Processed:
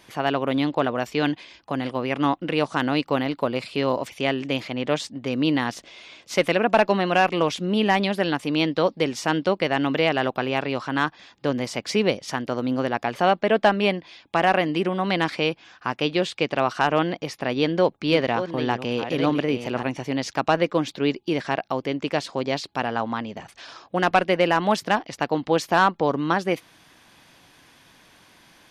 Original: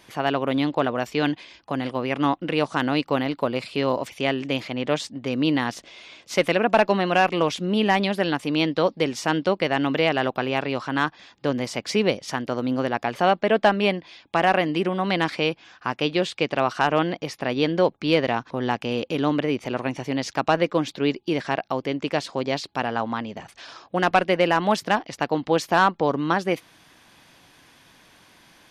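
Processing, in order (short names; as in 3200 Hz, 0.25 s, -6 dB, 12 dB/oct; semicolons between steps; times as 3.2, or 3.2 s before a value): 17.55–19.85 reverse delay 0.57 s, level -9 dB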